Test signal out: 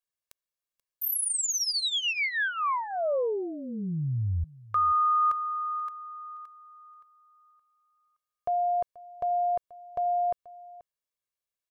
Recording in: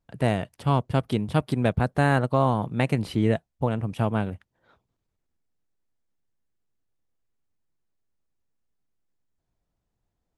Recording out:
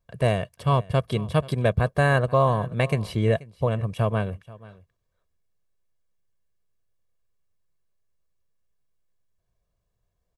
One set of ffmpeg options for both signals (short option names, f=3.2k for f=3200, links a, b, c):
-af "aecho=1:1:1.8:0.61,aecho=1:1:483:0.0944"